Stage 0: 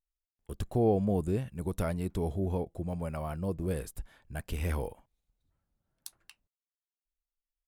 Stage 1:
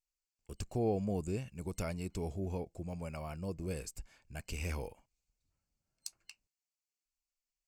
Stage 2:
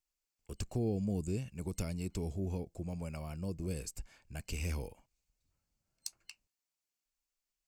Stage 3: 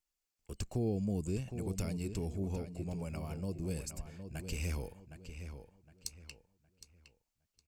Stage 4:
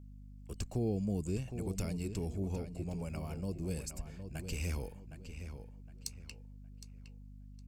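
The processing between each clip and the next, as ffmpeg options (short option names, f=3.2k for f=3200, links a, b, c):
-af "superequalizer=12b=2.51:14b=3.55:15b=3.98,volume=-6.5dB"
-filter_complex "[0:a]acrossover=split=380|3000[a][b][c];[b]acompressor=threshold=-50dB:ratio=6[d];[a][d][c]amix=inputs=3:normalize=0,volume=2dB"
-filter_complex "[0:a]asplit=2[a][b];[b]adelay=763,lowpass=f=4.2k:p=1,volume=-9dB,asplit=2[c][d];[d]adelay=763,lowpass=f=4.2k:p=1,volume=0.31,asplit=2[e][f];[f]adelay=763,lowpass=f=4.2k:p=1,volume=0.31,asplit=2[g][h];[h]adelay=763,lowpass=f=4.2k:p=1,volume=0.31[i];[a][c][e][g][i]amix=inputs=5:normalize=0"
-af "aeval=exprs='val(0)+0.00316*(sin(2*PI*50*n/s)+sin(2*PI*2*50*n/s)/2+sin(2*PI*3*50*n/s)/3+sin(2*PI*4*50*n/s)/4+sin(2*PI*5*50*n/s)/5)':c=same"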